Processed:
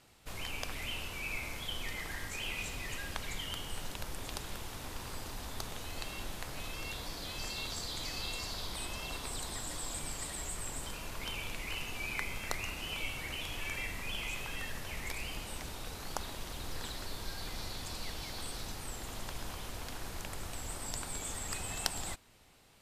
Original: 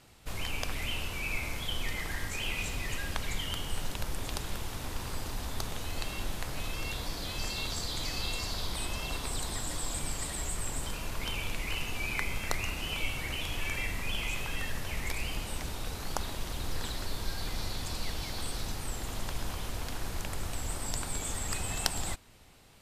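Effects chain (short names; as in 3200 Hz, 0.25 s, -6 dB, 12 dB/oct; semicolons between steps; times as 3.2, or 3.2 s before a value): low shelf 190 Hz -4.5 dB; gain -3.5 dB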